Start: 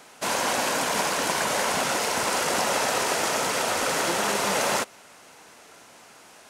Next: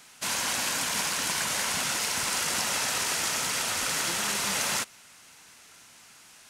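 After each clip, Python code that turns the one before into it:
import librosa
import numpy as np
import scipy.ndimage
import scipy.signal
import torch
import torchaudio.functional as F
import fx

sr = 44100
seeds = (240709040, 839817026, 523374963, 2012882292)

y = fx.peak_eq(x, sr, hz=520.0, db=-14.5, octaves=2.5)
y = y * 10.0 ** (1.0 / 20.0)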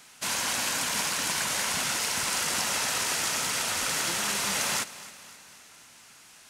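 y = fx.echo_feedback(x, sr, ms=263, feedback_pct=53, wet_db=-17.0)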